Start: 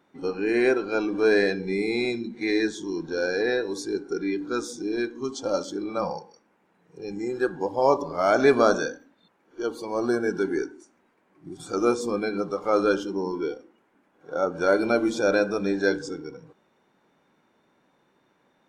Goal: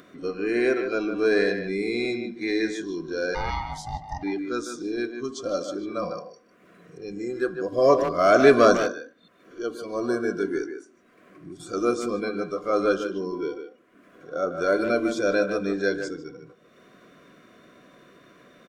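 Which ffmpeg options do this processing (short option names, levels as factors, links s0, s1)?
-filter_complex "[0:a]asuperstop=centerf=860:order=20:qfactor=3.8,acompressor=mode=upward:threshold=0.0126:ratio=2.5,asplit=3[s0][s1][s2];[s0]afade=t=out:st=3.34:d=0.02[s3];[s1]aeval=exprs='val(0)*sin(2*PI*450*n/s)':c=same,afade=t=in:st=3.34:d=0.02,afade=t=out:st=4.22:d=0.02[s4];[s2]afade=t=in:st=4.22:d=0.02[s5];[s3][s4][s5]amix=inputs=3:normalize=0,asettb=1/sr,asplit=3[s6][s7][s8];[s6]atrim=end=7.724[s9];[s7]atrim=start=7.72:end=8.77,asetpts=PTS-STARTPTS,afade=t=in:d=0.004:c=qsin,afade=t=out:st=1.046:d=0.004:c=qsin,acontrast=28[s10];[s8]atrim=start=8.766[s11];[s9][s10]acrossfade=d=0.004:c1=hsin:c2=qsin[s12];[s12][s11]acrossfade=d=0.004:c1=qsin:c2=hsin,asplit=2[s13][s14];[s14]adelay=150,highpass=300,lowpass=3400,asoftclip=type=hard:threshold=0.224,volume=0.447[s15];[s13][s15]amix=inputs=2:normalize=0,volume=0.841"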